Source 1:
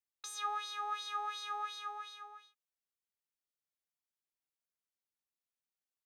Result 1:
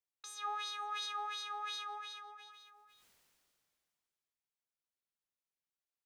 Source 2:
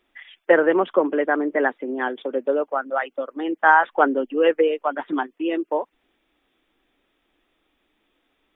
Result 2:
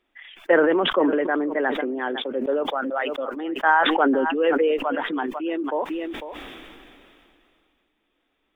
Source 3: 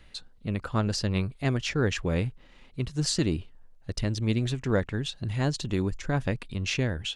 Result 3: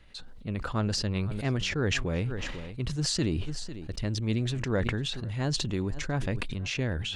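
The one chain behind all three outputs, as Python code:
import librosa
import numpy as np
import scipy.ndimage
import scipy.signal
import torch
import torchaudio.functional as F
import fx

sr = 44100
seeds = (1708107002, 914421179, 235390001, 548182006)

p1 = fx.high_shelf(x, sr, hz=9300.0, db=-6.0)
p2 = p1 + fx.echo_single(p1, sr, ms=500, db=-23.0, dry=0)
p3 = fx.sustainer(p2, sr, db_per_s=23.0)
y = p3 * 10.0 ** (-3.5 / 20.0)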